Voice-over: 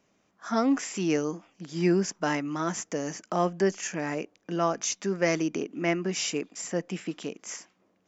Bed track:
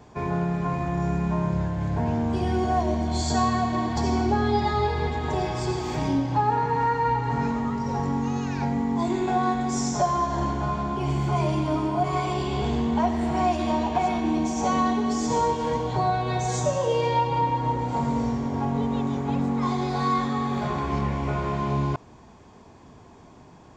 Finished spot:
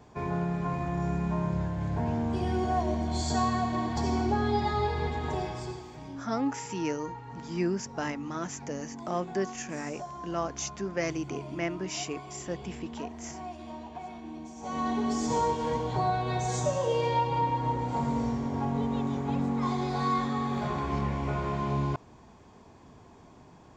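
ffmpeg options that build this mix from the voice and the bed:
ffmpeg -i stem1.wav -i stem2.wav -filter_complex "[0:a]adelay=5750,volume=-5.5dB[link_01];[1:a]volume=9dB,afade=type=out:start_time=5.25:duration=0.66:silence=0.223872,afade=type=in:start_time=14.61:duration=0.41:silence=0.211349[link_02];[link_01][link_02]amix=inputs=2:normalize=0" out.wav

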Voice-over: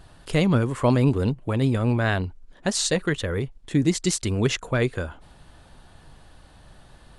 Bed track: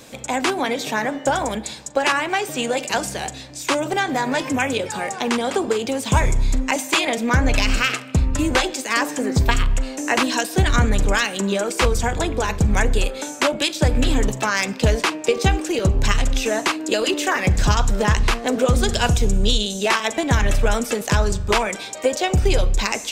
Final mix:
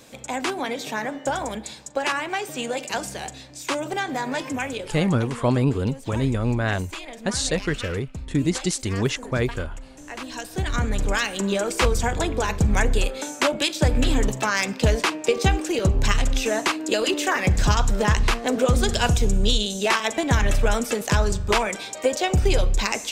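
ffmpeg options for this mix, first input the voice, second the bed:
ffmpeg -i stem1.wav -i stem2.wav -filter_complex "[0:a]adelay=4600,volume=-1dB[link_01];[1:a]volume=9.5dB,afade=type=out:start_time=4.41:duration=0.98:silence=0.266073,afade=type=in:start_time=10.16:duration=1.37:silence=0.177828[link_02];[link_01][link_02]amix=inputs=2:normalize=0" out.wav

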